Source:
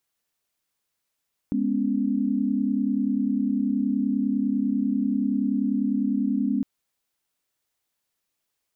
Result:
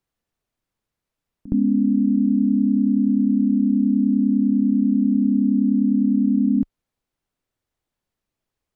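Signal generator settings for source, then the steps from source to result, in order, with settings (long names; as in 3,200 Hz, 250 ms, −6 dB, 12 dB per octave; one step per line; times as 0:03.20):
held notes G#3/B3/C#4 sine, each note −25.5 dBFS 5.11 s
spectral tilt −3 dB per octave
echo ahead of the sound 66 ms −18.5 dB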